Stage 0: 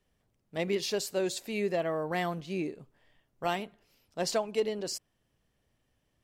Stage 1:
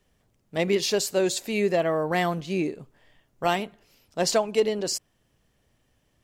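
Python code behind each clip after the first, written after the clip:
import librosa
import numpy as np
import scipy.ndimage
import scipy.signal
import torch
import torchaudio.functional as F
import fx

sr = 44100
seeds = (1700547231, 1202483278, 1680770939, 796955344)

y = fx.peak_eq(x, sr, hz=6900.0, db=2.5, octaves=0.39)
y = y * 10.0 ** (7.0 / 20.0)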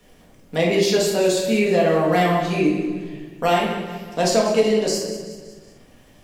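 y = fx.echo_feedback(x, sr, ms=186, feedback_pct=38, wet_db=-14)
y = fx.room_shoebox(y, sr, seeds[0], volume_m3=300.0, walls='mixed', distance_m=1.8)
y = fx.band_squash(y, sr, depth_pct=40)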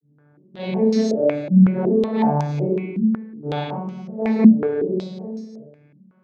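y = fx.vocoder_arp(x, sr, chord='major triad', root=50, every_ms=371)
y = fx.rev_schroeder(y, sr, rt60_s=0.36, comb_ms=28, drr_db=-5.5)
y = fx.filter_held_lowpass(y, sr, hz=5.4, low_hz=220.0, high_hz=5900.0)
y = y * 10.0 ** (-10.0 / 20.0)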